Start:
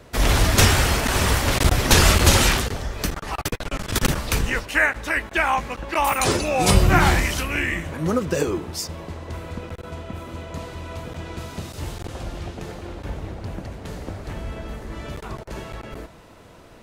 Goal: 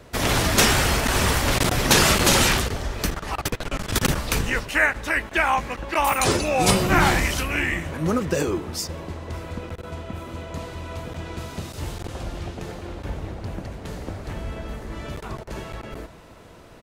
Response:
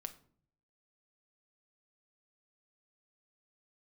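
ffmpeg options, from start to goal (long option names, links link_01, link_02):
-filter_complex "[0:a]afftfilt=real='re*lt(hypot(re,im),1.26)':imag='im*lt(hypot(re,im),1.26)':win_size=1024:overlap=0.75,asplit=2[link_01][link_02];[link_02]adelay=574,lowpass=frequency=2300:poles=1,volume=-20.5dB,asplit=2[link_03][link_04];[link_04]adelay=574,lowpass=frequency=2300:poles=1,volume=0.41,asplit=2[link_05][link_06];[link_06]adelay=574,lowpass=frequency=2300:poles=1,volume=0.41[link_07];[link_03][link_05][link_07]amix=inputs=3:normalize=0[link_08];[link_01][link_08]amix=inputs=2:normalize=0"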